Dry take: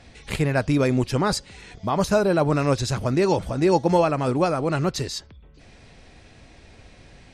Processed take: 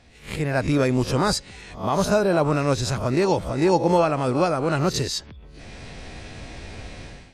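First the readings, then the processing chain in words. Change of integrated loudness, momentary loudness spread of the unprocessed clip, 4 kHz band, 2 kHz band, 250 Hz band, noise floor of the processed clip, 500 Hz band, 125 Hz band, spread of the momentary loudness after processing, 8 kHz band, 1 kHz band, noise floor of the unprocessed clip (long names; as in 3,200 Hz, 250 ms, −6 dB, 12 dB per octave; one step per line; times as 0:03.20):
+0.5 dB, 10 LU, +2.5 dB, +1.0 dB, 0.0 dB, −46 dBFS, +0.5 dB, −0.5 dB, 19 LU, +2.5 dB, +1.0 dB, −50 dBFS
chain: peak hold with a rise ahead of every peak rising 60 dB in 0.34 s
automatic gain control gain up to 16 dB
level −6.5 dB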